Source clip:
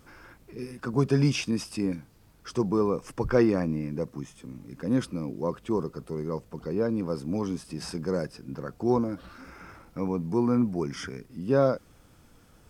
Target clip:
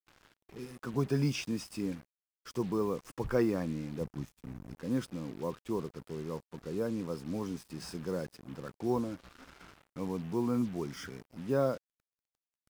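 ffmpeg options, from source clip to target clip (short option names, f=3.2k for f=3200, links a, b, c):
-filter_complex "[0:a]acrusher=bits=6:mix=0:aa=0.5,asettb=1/sr,asplit=3[a][b][c];[a]atrim=end=4.014[d];[b]atrim=start=4.01:end=4.74,asetpts=PTS-STARTPTS,afade=t=in:d=0.004:c=qsin,afade=t=out:st=0.726:d=0.004:c=qsin,lowshelf=f=150:g=11[e];[c]atrim=start=4.736[f];[d][e]acrossfade=d=0.004:c1=hsin:c2=qsin[g];[g][f]acrossfade=d=0.004:c1=qsin:c2=hsin,volume=-7dB"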